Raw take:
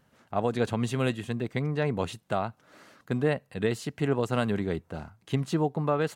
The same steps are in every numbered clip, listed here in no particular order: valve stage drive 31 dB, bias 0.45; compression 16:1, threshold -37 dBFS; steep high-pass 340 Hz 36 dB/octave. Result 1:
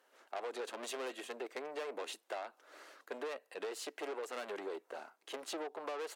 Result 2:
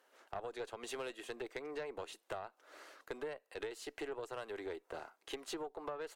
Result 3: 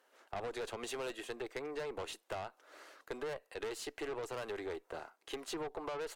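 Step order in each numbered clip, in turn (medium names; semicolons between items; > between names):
valve stage > steep high-pass > compression; steep high-pass > compression > valve stage; steep high-pass > valve stage > compression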